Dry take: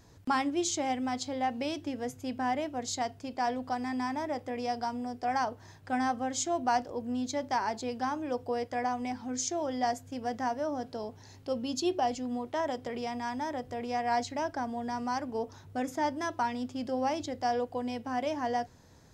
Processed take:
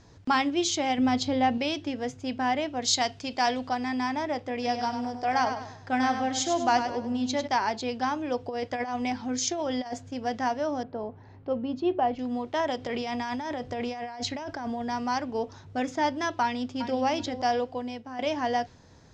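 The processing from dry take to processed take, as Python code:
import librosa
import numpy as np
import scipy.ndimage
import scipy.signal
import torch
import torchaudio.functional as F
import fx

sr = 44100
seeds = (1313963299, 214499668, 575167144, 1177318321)

y = fx.low_shelf(x, sr, hz=420.0, db=9.0, at=(0.98, 1.58))
y = fx.high_shelf(y, sr, hz=2500.0, db=8.5, at=(2.83, 3.68))
y = fx.echo_feedback(y, sr, ms=99, feedback_pct=39, wet_db=-8.0, at=(4.62, 7.46), fade=0.02)
y = fx.over_compress(y, sr, threshold_db=-33.0, ratio=-0.5, at=(8.44, 10.09))
y = fx.lowpass(y, sr, hz=1600.0, slope=12, at=(10.83, 12.19))
y = fx.over_compress(y, sr, threshold_db=-37.0, ratio=-1.0, at=(12.8, 14.82))
y = fx.echo_throw(y, sr, start_s=16.42, length_s=0.61, ms=380, feedback_pct=20, wet_db=-10.0)
y = fx.edit(y, sr, fx.fade_out_to(start_s=17.54, length_s=0.65, floor_db=-10.5), tone=tone)
y = scipy.signal.sosfilt(scipy.signal.butter(4, 6600.0, 'lowpass', fs=sr, output='sos'), y)
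y = fx.dynamic_eq(y, sr, hz=3100.0, q=1.0, threshold_db=-51.0, ratio=4.0, max_db=6)
y = y * librosa.db_to_amplitude(3.5)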